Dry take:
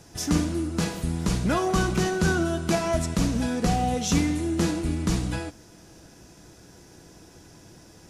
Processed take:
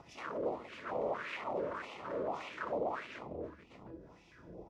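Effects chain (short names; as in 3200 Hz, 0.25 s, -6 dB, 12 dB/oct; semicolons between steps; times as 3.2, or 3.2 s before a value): octaver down 2 oct, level -5 dB; flutter echo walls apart 6.8 m, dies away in 0.28 s; plain phase-vocoder stretch 0.58×; RIAA curve playback; tapped delay 62/86/173/223/771 ms -5/-17.5/-11/-9/-8 dB; wavefolder -21 dBFS; LFO notch square 2.2 Hz 780–1600 Hz; compressor 6:1, threshold -42 dBFS, peak gain reduction 16.5 dB; wah 1.7 Hz 500–2600 Hz, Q 2.9; gain +14.5 dB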